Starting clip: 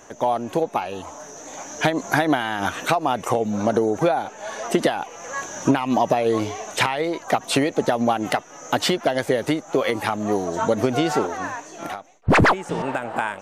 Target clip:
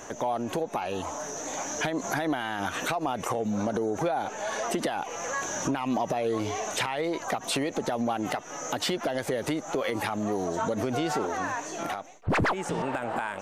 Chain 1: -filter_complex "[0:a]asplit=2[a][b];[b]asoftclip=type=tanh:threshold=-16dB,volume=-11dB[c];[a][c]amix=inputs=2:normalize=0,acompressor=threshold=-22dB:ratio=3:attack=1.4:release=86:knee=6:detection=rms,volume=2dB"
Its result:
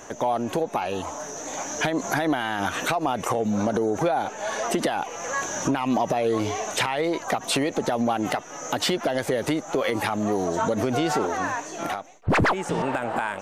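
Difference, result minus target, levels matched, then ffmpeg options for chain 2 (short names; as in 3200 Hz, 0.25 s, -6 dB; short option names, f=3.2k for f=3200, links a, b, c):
compressor: peak gain reduction -4.5 dB
-filter_complex "[0:a]asplit=2[a][b];[b]asoftclip=type=tanh:threshold=-16dB,volume=-11dB[c];[a][c]amix=inputs=2:normalize=0,acompressor=threshold=-29dB:ratio=3:attack=1.4:release=86:knee=6:detection=rms,volume=2dB"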